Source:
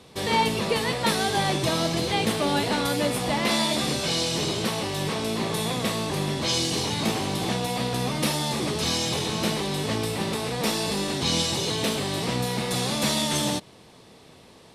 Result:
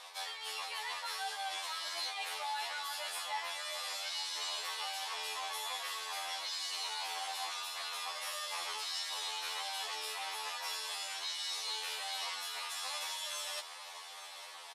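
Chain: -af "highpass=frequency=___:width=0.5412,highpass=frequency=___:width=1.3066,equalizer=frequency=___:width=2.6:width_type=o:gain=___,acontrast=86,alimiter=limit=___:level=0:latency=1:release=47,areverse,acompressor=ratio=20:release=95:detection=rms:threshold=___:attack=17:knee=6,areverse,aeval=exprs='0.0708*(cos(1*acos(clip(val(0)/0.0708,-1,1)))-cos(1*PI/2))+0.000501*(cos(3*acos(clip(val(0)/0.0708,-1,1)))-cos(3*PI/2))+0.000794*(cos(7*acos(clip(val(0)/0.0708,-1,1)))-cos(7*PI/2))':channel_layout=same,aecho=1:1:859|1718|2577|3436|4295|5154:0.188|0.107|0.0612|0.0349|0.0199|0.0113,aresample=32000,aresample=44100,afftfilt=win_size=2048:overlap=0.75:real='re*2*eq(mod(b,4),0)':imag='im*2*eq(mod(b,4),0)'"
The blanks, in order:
790, 790, 1100, 2, -11dB, -35dB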